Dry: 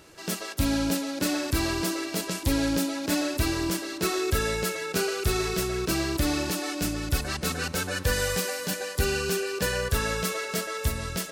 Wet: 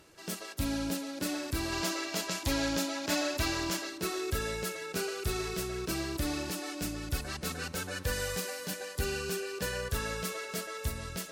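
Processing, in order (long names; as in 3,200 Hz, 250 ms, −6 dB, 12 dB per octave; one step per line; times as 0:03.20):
reversed playback
upward compression, threshold −39 dBFS
reversed playback
gain on a spectral selection 0:01.72–0:03.90, 550–7,600 Hz +6 dB
level −7 dB
MP3 80 kbit/s 48,000 Hz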